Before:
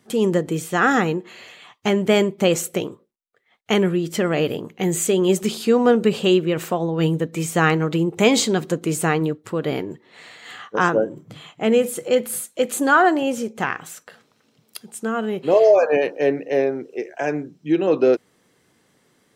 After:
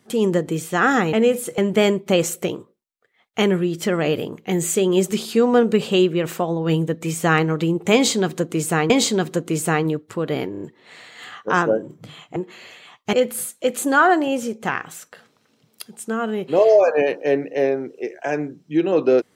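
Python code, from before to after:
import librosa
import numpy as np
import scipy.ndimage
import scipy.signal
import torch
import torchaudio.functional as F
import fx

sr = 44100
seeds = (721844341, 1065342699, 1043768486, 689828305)

y = fx.edit(x, sr, fx.swap(start_s=1.13, length_s=0.77, other_s=11.63, other_length_s=0.45),
    fx.repeat(start_s=8.26, length_s=0.96, count=2),
    fx.stutter(start_s=9.88, slice_s=0.03, count=4), tone=tone)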